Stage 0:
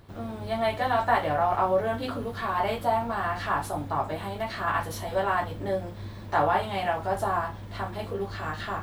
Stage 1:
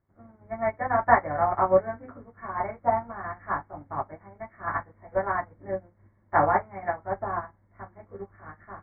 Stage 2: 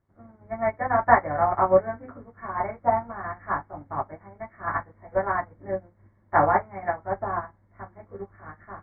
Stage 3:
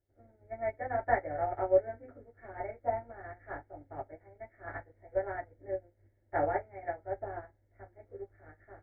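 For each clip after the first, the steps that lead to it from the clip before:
Chebyshev low-pass 2200 Hz, order 8; notch 450 Hz, Q 12; upward expander 2.5:1, over -40 dBFS; gain +7 dB
air absorption 59 m; gain +2 dB
fixed phaser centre 450 Hz, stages 4; gain -5.5 dB

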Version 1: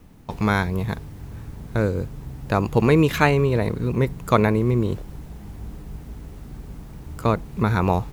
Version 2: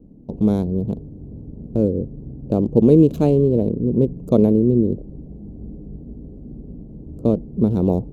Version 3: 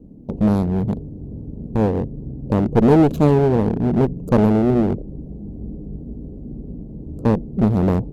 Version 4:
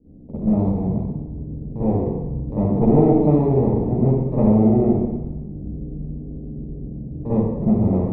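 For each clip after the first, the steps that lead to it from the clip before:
Wiener smoothing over 25 samples; EQ curve 110 Hz 0 dB, 240 Hz +10 dB, 570 Hz +4 dB, 870 Hz -11 dB, 1900 Hz -29 dB, 2900 Hz -12 dB, 8800 Hz -5 dB; gain -1.5 dB
one-sided clip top -20 dBFS; gain +3.5 dB
running mean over 29 samples; reverb RT60 1.1 s, pre-delay 46 ms, DRR -13 dB; gain -13 dB

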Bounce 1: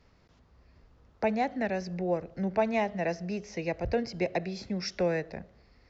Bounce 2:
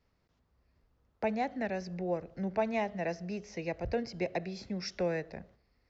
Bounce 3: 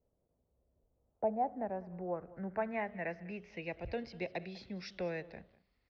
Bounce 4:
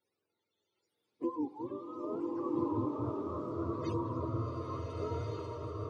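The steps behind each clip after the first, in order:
gate -54 dBFS, range -8 dB; gain -4 dB
low-pass sweep 580 Hz -> 3500 Hz, 0.86–3.93; echo 0.199 s -20 dB; gain -6.5 dB
spectrum mirrored in octaves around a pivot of 470 Hz; bloom reverb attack 1.44 s, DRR -4 dB; gain -1.5 dB

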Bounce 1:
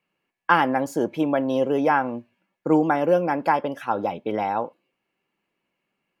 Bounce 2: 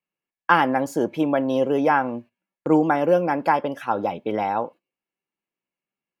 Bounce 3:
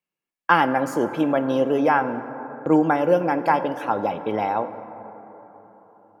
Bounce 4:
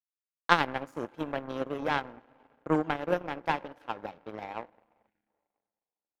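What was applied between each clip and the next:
gate -42 dBFS, range -15 dB; gain +1 dB
plate-style reverb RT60 4.3 s, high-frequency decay 0.3×, DRR 11 dB
power-law curve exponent 2; spectral gain 5.07–5.28, 350–1400 Hz -12 dB

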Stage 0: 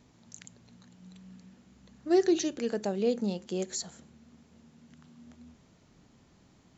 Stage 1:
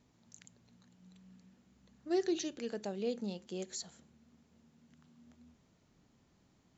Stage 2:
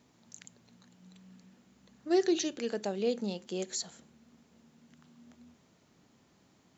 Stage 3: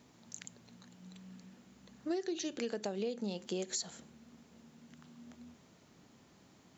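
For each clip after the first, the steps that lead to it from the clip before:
dynamic EQ 3400 Hz, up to +4 dB, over -50 dBFS, Q 0.99; gain -8.5 dB
HPF 190 Hz 6 dB/oct; gain +6.5 dB
compressor 16:1, threshold -36 dBFS, peak gain reduction 15 dB; gain +3 dB

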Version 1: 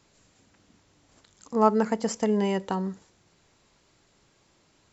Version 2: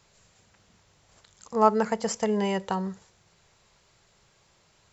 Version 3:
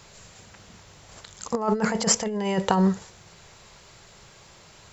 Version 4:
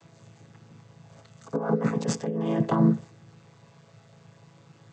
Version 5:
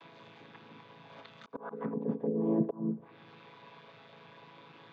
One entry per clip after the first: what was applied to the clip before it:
bell 280 Hz -14 dB 0.55 oct; gain +2 dB
limiter -17.5 dBFS, peak gain reduction 11 dB; negative-ratio compressor -30 dBFS, ratio -0.5; gain +8.5 dB
chord vocoder major triad, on A2
speaker cabinet 250–4200 Hz, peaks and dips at 260 Hz +7 dB, 450 Hz +4 dB, 1000 Hz +10 dB, 1600 Hz +5 dB, 2400 Hz +8 dB, 3500 Hz +9 dB; auto swell 0.501 s; treble ducked by the level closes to 400 Hz, closed at -30 dBFS

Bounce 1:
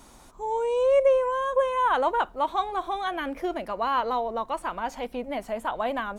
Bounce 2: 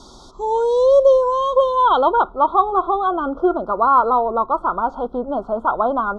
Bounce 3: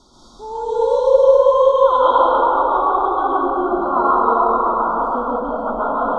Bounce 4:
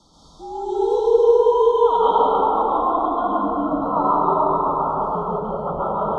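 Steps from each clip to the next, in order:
Chebyshev band-stop 1400–3300 Hz, order 5; small resonant body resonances 380/3200 Hz, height 7 dB; low-pass sweep 5000 Hz -> 1600 Hz, 1.45–2.55; gain +8 dB
plate-style reverb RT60 3.8 s, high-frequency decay 0.5×, pre-delay 0.11 s, DRR -9.5 dB; gain -9.5 dB
frequency shift -70 Hz; gain -3 dB

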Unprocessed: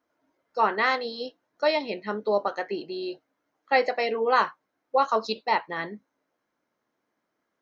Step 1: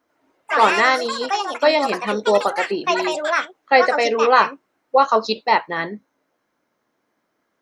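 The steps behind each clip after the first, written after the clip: echoes that change speed 86 ms, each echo +5 st, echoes 3, each echo -6 dB; gain +7.5 dB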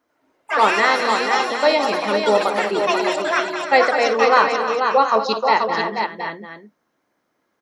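tapped delay 57/209/308/485/720 ms -13.5/-11/-12/-5.5/-12 dB; gain -1 dB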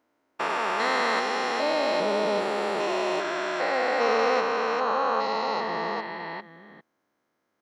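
stepped spectrum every 0.4 s; gain -4.5 dB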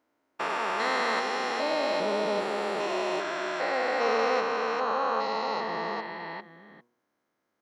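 de-hum 120.1 Hz, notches 9; gain -2.5 dB

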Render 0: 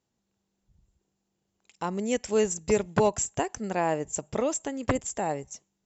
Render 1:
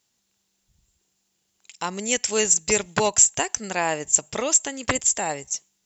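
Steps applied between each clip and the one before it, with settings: tilt shelf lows -9 dB, about 1400 Hz; gain +6.5 dB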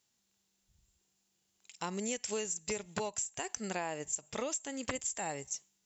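harmonic-percussive split percussive -6 dB; compressor 16:1, threshold -29 dBFS, peak gain reduction 14.5 dB; gain -3.5 dB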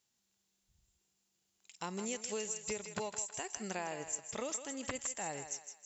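thinning echo 0.16 s, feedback 44%, high-pass 550 Hz, level -8 dB; gain -3 dB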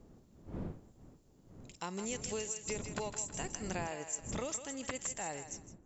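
ending faded out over 0.51 s; wind noise 250 Hz -49 dBFS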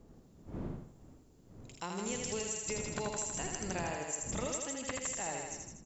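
feedback echo 80 ms, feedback 38%, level -4 dB

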